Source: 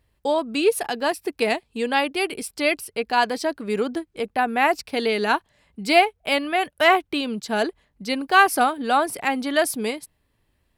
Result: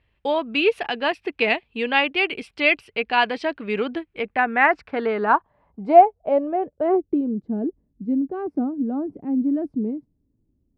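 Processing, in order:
low-pass filter sweep 2,700 Hz → 280 Hz, 0:04.02–0:07.55
level −1 dB

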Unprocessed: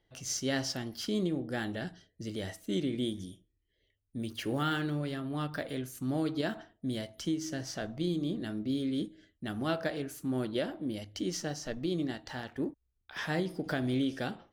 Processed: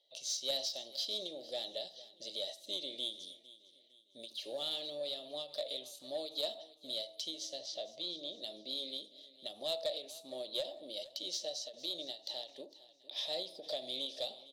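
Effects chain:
spectral tilt +4 dB per octave
in parallel at −1 dB: downward compressor, threshold −40 dBFS, peak gain reduction 17.5 dB
on the sum: pair of resonant band-passes 1,500 Hz, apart 2.7 octaves
soft clipping −30.5 dBFS, distortion −18 dB
0:07.59–0:08.41: high-frequency loss of the air 76 metres
repeating echo 456 ms, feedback 41%, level −18.5 dB
on a send at −23 dB: convolution reverb, pre-delay 48 ms
on the sum: every ending faded ahead of time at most 180 dB per second
level +4 dB

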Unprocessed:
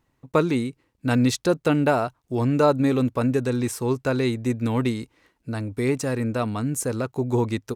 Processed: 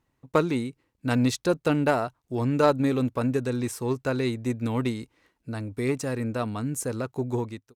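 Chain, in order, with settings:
fade-out on the ending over 0.50 s
harmonic generator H 3 −18 dB, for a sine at −7 dBFS

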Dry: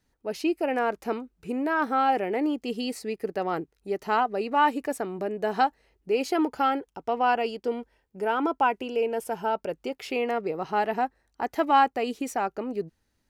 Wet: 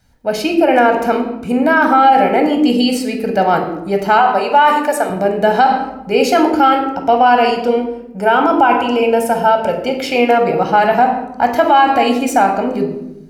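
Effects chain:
0:04.19–0:05.10: high-pass filter 400 Hz 12 dB per octave
convolution reverb RT60 0.90 s, pre-delay 16 ms, DRR 4 dB
boost into a limiter +13 dB
level −1 dB

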